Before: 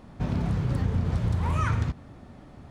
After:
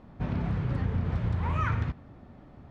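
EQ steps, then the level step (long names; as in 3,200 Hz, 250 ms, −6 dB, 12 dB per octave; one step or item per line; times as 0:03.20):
high-shelf EQ 4,800 Hz −12 dB
dynamic equaliser 2,100 Hz, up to +5 dB, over −48 dBFS, Q 0.73
high-frequency loss of the air 52 metres
−3.0 dB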